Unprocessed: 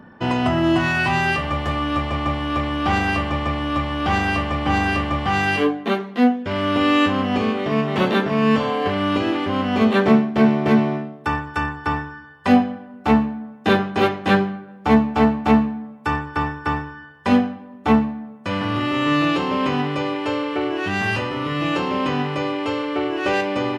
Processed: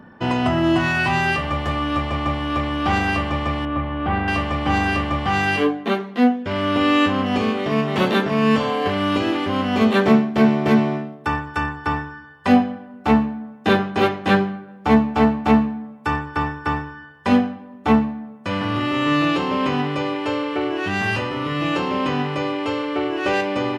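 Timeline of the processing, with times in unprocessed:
3.65–4.28 s: distance through air 480 m
7.26–11.15 s: treble shelf 5.2 kHz +6 dB

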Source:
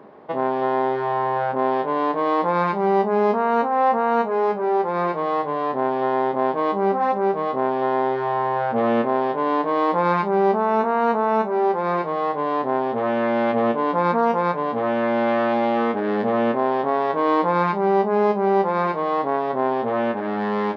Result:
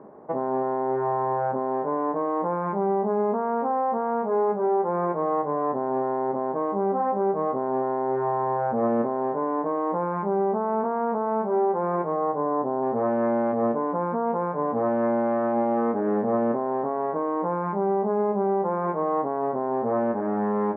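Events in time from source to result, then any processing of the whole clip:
12.16–12.81 s: low-pass 1.9 kHz -> 1.2 kHz
whole clip: peak limiter -14.5 dBFS; Bessel low-pass 1 kHz, order 4

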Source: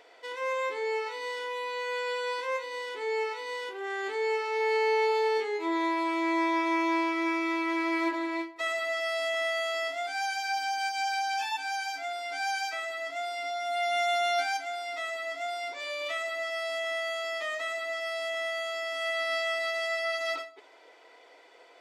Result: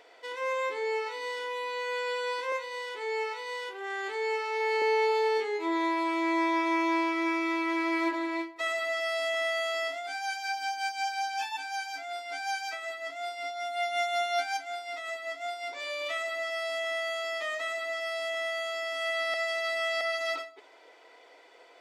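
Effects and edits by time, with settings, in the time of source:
2.52–4.82 s: high-pass 410 Hz
9.93–15.73 s: tremolo 5.4 Hz, depth 50%
19.34–20.01 s: reverse

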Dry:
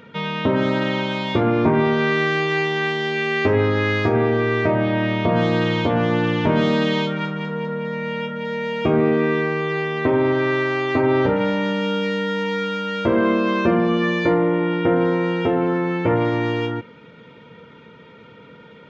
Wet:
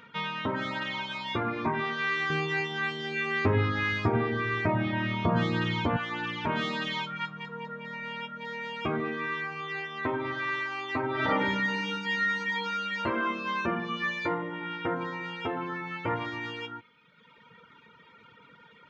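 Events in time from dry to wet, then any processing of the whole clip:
2.30–5.97 s: bass shelf 370 Hz +10.5 dB
11.13–13.00 s: reverb throw, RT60 1.2 s, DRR -3 dB
whole clip: reverb removal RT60 1.3 s; resonant low shelf 780 Hz -7 dB, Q 1.5; trim -4.5 dB

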